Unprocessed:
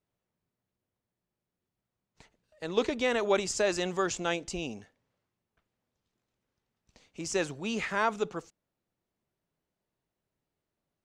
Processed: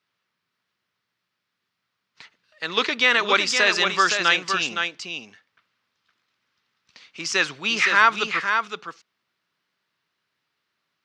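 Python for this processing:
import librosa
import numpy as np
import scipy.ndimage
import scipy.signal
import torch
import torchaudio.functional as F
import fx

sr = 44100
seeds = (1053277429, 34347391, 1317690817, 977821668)

y = scipy.signal.sosfilt(scipy.signal.butter(2, 130.0, 'highpass', fs=sr, output='sos'), x)
y = fx.band_shelf(y, sr, hz=2400.0, db=15.5, octaves=2.7)
y = y + 10.0 ** (-6.0 / 20.0) * np.pad(y, (int(515 * sr / 1000.0), 0))[:len(y)]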